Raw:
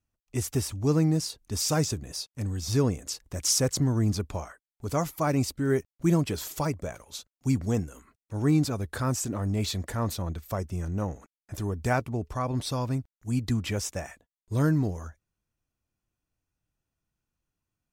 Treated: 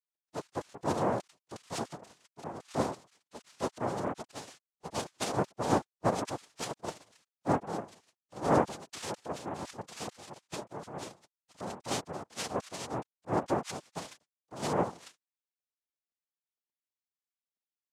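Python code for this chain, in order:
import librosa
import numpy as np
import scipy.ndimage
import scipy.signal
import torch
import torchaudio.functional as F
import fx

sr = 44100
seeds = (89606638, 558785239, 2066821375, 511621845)

y = fx.sine_speech(x, sr)
y = fx.noise_vocoder(y, sr, seeds[0], bands=2)
y = y * 10.0 ** (-7.5 / 20.0)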